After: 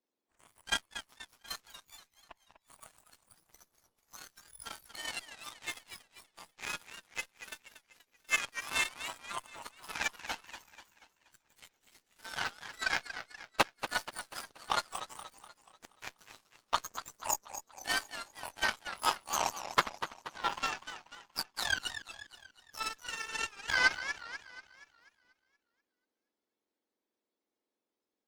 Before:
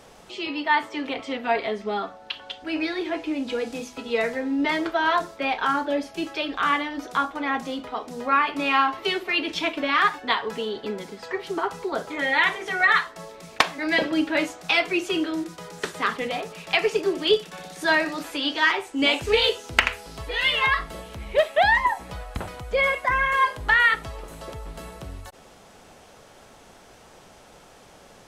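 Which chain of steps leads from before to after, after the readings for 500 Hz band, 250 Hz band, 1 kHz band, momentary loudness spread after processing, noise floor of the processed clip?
-22.0 dB, -25.5 dB, -14.0 dB, 19 LU, under -85 dBFS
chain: spectrum inverted on a logarithmic axis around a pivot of 1.7 kHz; Chebyshev shaper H 3 -11 dB, 4 -33 dB, 5 -39 dB, 7 -30 dB, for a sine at -8 dBFS; modulated delay 241 ms, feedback 47%, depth 186 cents, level -11 dB

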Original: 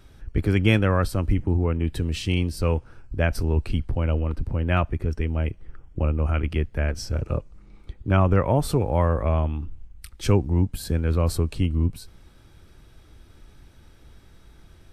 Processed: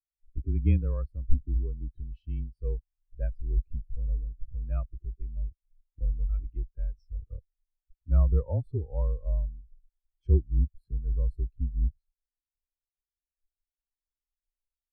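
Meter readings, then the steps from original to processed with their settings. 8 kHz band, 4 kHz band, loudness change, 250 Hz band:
under -40 dB, under -35 dB, -7.5 dB, -14.5 dB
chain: frequency shift -29 Hz; spectral contrast expander 2.5:1; trim -2.5 dB

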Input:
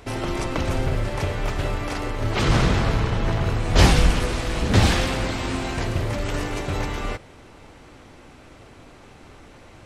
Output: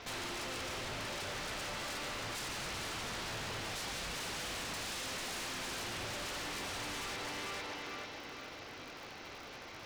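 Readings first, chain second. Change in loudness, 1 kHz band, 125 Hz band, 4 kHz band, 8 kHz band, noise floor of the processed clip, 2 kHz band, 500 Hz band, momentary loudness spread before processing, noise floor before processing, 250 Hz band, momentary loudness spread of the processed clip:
-16.5 dB, -14.0 dB, -27.5 dB, -9.5 dB, -7.5 dB, -49 dBFS, -11.0 dB, -17.5 dB, 10 LU, -47 dBFS, -21.5 dB, 8 LU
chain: CVSD coder 32 kbps; crackle 120 per s -45 dBFS; low-pass 3.8 kHz 6 dB/octave; tilt EQ +3 dB/octave; thinning echo 446 ms, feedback 47%, high-pass 170 Hz, level -6 dB; compression 6:1, threshold -31 dBFS, peak gain reduction 14 dB; wavefolder -35 dBFS; trim -1 dB

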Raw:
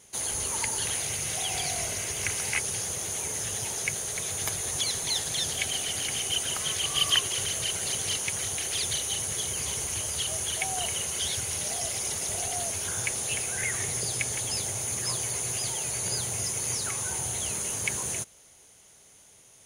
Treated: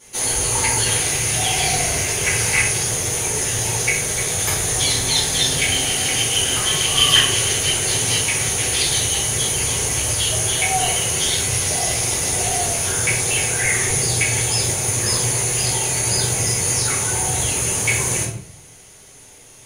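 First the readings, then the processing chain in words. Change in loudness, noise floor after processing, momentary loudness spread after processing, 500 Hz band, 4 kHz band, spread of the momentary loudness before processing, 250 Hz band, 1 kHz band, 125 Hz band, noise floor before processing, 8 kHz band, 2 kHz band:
+10.5 dB, -44 dBFS, 2 LU, +12.5 dB, +10.5 dB, 2 LU, +13.5 dB, +12.5 dB, +15.0 dB, -55 dBFS, +10.0 dB, +12.5 dB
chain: simulated room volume 94 m³, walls mixed, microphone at 2.3 m; trim +2 dB

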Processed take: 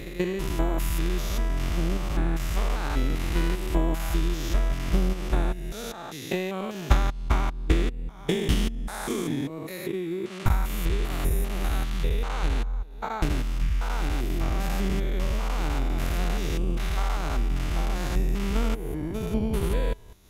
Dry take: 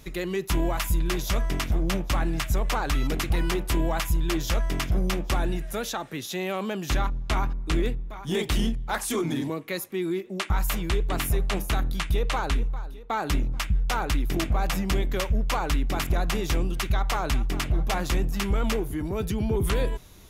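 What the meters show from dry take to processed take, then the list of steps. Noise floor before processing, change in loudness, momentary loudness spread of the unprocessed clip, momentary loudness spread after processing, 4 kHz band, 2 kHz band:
-39 dBFS, -1.0 dB, 4 LU, 5 LU, -4.0 dB, -3.5 dB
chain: spectrogram pixelated in time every 200 ms; transient shaper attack +12 dB, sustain -7 dB

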